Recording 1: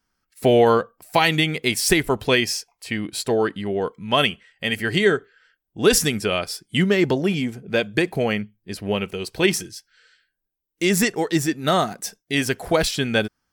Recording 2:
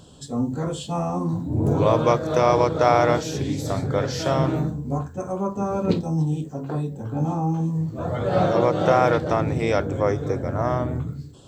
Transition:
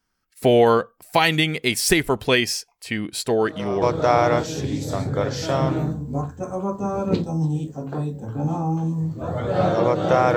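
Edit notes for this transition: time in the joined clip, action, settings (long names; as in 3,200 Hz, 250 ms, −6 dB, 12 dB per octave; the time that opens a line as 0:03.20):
recording 1
0:03.41: mix in recording 2 from 0:02.18 0.41 s −13.5 dB
0:03.82: continue with recording 2 from 0:02.59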